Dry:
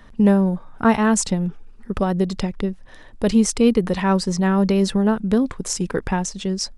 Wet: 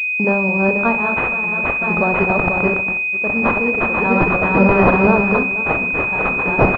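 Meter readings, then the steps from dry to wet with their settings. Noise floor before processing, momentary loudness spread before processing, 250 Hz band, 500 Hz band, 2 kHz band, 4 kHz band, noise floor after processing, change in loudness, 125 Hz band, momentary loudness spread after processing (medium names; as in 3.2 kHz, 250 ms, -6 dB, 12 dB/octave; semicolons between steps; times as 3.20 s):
-43 dBFS, 9 LU, -1.0 dB, +4.5 dB, +17.0 dB, under -10 dB, -21 dBFS, +5.0 dB, +1.0 dB, 5 LU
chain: backward echo that repeats 244 ms, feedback 64%, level -2.5 dB; gate -23 dBFS, range -22 dB; tilt EQ +4.5 dB/octave; level rider; wow and flutter 33 cents; on a send: feedback delay 65 ms, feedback 44%, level -14.5 dB; on the sum: random-step tremolo; Schroeder reverb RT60 0.31 s, combs from 31 ms, DRR 13 dB; in parallel at -6 dB: hard clipper -11 dBFS, distortion -20 dB; on the sum: class-D stage that switches slowly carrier 2.5 kHz; trim +4 dB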